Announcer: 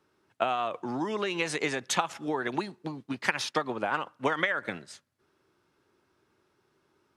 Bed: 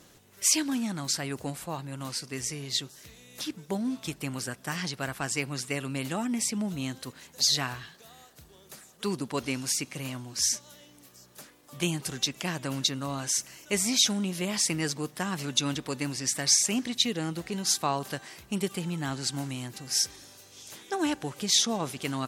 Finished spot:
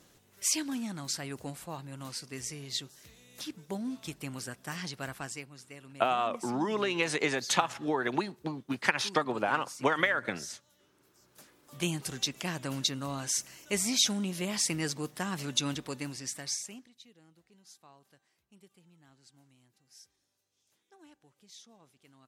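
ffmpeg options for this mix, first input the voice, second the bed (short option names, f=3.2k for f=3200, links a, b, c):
-filter_complex "[0:a]adelay=5600,volume=0.5dB[a];[1:a]volume=8.5dB,afade=t=out:st=5.14:d=0.35:silence=0.266073,afade=t=in:st=11.05:d=0.8:silence=0.199526,afade=t=out:st=15.63:d=1.27:silence=0.0473151[b];[a][b]amix=inputs=2:normalize=0"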